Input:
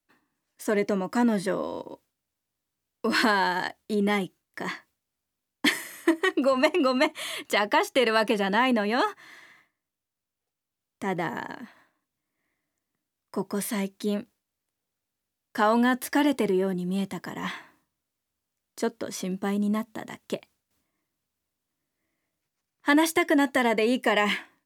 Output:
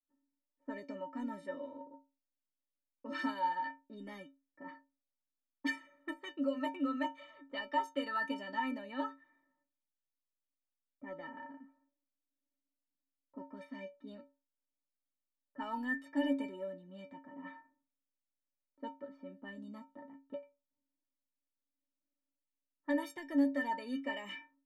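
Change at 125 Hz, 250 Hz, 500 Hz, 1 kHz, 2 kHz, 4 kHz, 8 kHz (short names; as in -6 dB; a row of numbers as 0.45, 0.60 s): under -20 dB, -12.5 dB, -17.0 dB, -12.0 dB, -15.0 dB, -18.0 dB, under -25 dB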